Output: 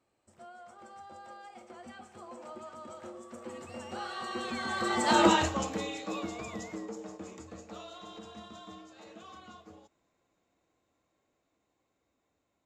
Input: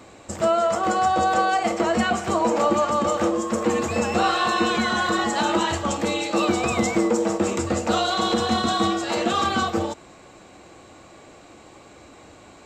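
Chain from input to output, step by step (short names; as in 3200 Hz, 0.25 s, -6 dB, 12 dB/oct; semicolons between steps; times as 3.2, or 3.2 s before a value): Doppler pass-by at 5.24, 19 m/s, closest 2.9 m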